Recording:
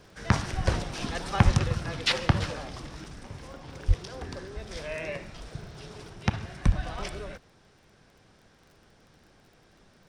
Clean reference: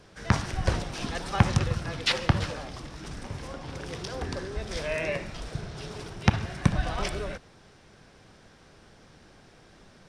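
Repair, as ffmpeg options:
-filter_complex "[0:a]adeclick=t=4,asplit=3[s0][s1][s2];[s0]afade=t=out:st=1.44:d=0.02[s3];[s1]highpass=f=140:w=0.5412,highpass=f=140:w=1.3066,afade=t=in:st=1.44:d=0.02,afade=t=out:st=1.56:d=0.02[s4];[s2]afade=t=in:st=1.56:d=0.02[s5];[s3][s4][s5]amix=inputs=3:normalize=0,asplit=3[s6][s7][s8];[s6]afade=t=out:st=3.87:d=0.02[s9];[s7]highpass=f=140:w=0.5412,highpass=f=140:w=1.3066,afade=t=in:st=3.87:d=0.02,afade=t=out:st=3.99:d=0.02[s10];[s8]afade=t=in:st=3.99:d=0.02[s11];[s9][s10][s11]amix=inputs=3:normalize=0,asplit=3[s12][s13][s14];[s12]afade=t=out:st=6.65:d=0.02[s15];[s13]highpass=f=140:w=0.5412,highpass=f=140:w=1.3066,afade=t=in:st=6.65:d=0.02,afade=t=out:st=6.77:d=0.02[s16];[s14]afade=t=in:st=6.77:d=0.02[s17];[s15][s16][s17]amix=inputs=3:normalize=0,asetnsamples=n=441:p=0,asendcmd='3.04 volume volume 5dB',volume=1"

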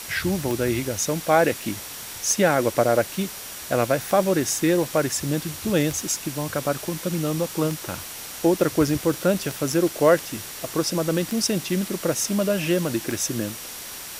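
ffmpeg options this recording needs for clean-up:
-af "adeclick=t=4,bandreject=f=5700:w=30,afwtdn=0.018"

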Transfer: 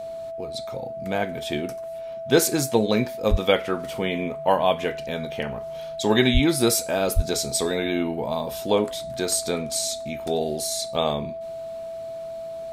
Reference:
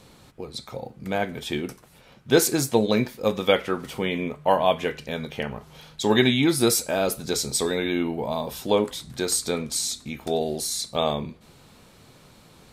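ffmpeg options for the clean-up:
-filter_complex "[0:a]bandreject=f=660:w=30,asplit=3[s0][s1][s2];[s0]afade=t=out:st=3.3:d=0.02[s3];[s1]highpass=f=140:w=0.5412,highpass=f=140:w=1.3066,afade=t=in:st=3.3:d=0.02,afade=t=out:st=3.42:d=0.02[s4];[s2]afade=t=in:st=3.42:d=0.02[s5];[s3][s4][s5]amix=inputs=3:normalize=0,asplit=3[s6][s7][s8];[s6]afade=t=out:st=6.33:d=0.02[s9];[s7]highpass=f=140:w=0.5412,highpass=f=140:w=1.3066,afade=t=in:st=6.33:d=0.02,afade=t=out:st=6.45:d=0.02[s10];[s8]afade=t=in:st=6.45:d=0.02[s11];[s9][s10][s11]amix=inputs=3:normalize=0,asplit=3[s12][s13][s14];[s12]afade=t=out:st=7.15:d=0.02[s15];[s13]highpass=f=140:w=0.5412,highpass=f=140:w=1.3066,afade=t=in:st=7.15:d=0.02,afade=t=out:st=7.27:d=0.02[s16];[s14]afade=t=in:st=7.27:d=0.02[s17];[s15][s16][s17]amix=inputs=3:normalize=0"

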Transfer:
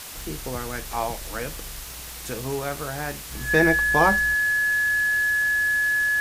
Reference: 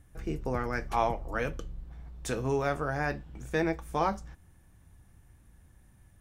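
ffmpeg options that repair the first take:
-af "adeclick=t=4,bandreject=f=1700:w=30,afwtdn=0.014,asetnsamples=n=441:p=0,asendcmd='3.31 volume volume -8.5dB',volume=1"

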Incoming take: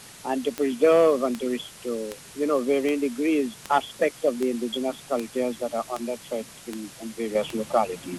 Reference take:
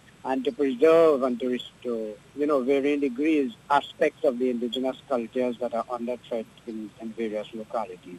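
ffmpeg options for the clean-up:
-af "adeclick=t=4,afwtdn=0.0063,asetnsamples=n=441:p=0,asendcmd='7.35 volume volume -7.5dB',volume=1"

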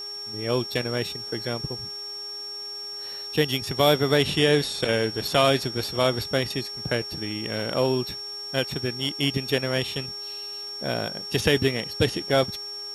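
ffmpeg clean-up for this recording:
-af "adeclick=t=4,bandreject=f=409.5:t=h:w=4,bandreject=f=819:t=h:w=4,bandreject=f=1228.5:t=h:w=4,bandreject=f=1638:t=h:w=4,bandreject=f=5500:w=30,afwtdn=0.0028"

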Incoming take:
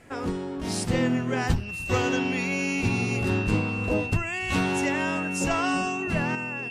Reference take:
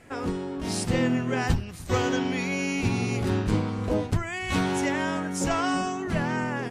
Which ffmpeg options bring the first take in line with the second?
-af "bandreject=f=2700:w=30,asetnsamples=n=441:p=0,asendcmd='6.35 volume volume 7dB',volume=1"

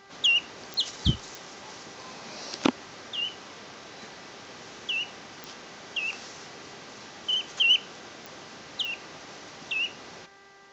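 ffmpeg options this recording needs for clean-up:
-af "adeclick=t=4,bandreject=f=394.8:t=h:w=4,bandreject=f=789.6:t=h:w=4,bandreject=f=1184.4:t=h:w=4,bandreject=f=1579.2:t=h:w=4,bandreject=f=1974:t=h:w=4"

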